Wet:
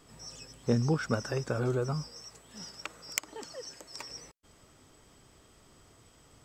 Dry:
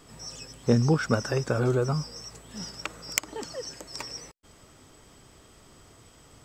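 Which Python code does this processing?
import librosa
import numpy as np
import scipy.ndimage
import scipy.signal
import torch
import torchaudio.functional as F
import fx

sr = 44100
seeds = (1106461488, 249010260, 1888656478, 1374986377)

y = fx.low_shelf(x, sr, hz=250.0, db=-7.0, at=(2.08, 4.1))
y = F.gain(torch.from_numpy(y), -5.5).numpy()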